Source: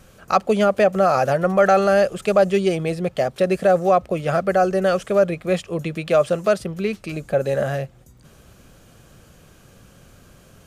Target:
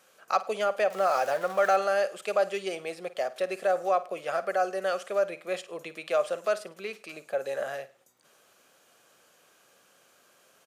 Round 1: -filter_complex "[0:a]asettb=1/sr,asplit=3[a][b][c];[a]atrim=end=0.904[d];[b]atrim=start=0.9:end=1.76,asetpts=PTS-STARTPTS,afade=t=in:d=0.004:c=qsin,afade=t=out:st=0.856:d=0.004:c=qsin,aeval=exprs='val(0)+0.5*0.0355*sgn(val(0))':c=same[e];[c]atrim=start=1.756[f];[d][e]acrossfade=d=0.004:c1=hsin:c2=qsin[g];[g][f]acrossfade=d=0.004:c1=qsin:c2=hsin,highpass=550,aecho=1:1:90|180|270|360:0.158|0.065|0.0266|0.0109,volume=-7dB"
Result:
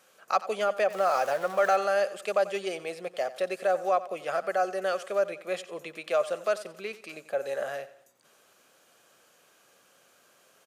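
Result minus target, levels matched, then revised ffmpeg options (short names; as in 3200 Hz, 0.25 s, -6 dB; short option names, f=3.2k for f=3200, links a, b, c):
echo 38 ms late
-filter_complex "[0:a]asettb=1/sr,asplit=3[a][b][c];[a]atrim=end=0.904[d];[b]atrim=start=0.9:end=1.76,asetpts=PTS-STARTPTS,afade=t=in:d=0.004:c=qsin,afade=t=out:st=0.856:d=0.004:c=qsin,aeval=exprs='val(0)+0.5*0.0355*sgn(val(0))':c=same[e];[c]atrim=start=1.756[f];[d][e]acrossfade=d=0.004:c1=hsin:c2=qsin[g];[g][f]acrossfade=d=0.004:c1=qsin:c2=hsin,highpass=550,aecho=1:1:52|104|156|208:0.158|0.065|0.0266|0.0109,volume=-7dB"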